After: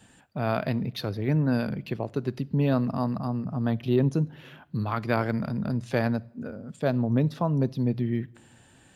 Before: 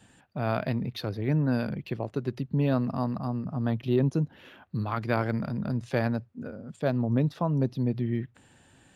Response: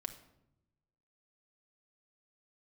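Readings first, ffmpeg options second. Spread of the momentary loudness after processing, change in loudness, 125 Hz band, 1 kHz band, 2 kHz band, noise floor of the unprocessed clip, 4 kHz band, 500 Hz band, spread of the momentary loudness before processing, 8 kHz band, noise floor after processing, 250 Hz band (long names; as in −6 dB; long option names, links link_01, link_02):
8 LU, +1.5 dB, +1.0 dB, +1.5 dB, +1.5 dB, −60 dBFS, +2.5 dB, +1.5 dB, 8 LU, can't be measured, −57 dBFS, +2.0 dB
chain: -filter_complex "[0:a]asplit=2[link_01][link_02];[1:a]atrim=start_sample=2205,highshelf=frequency=4100:gain=10.5[link_03];[link_02][link_03]afir=irnorm=-1:irlink=0,volume=-11.5dB[link_04];[link_01][link_04]amix=inputs=2:normalize=0"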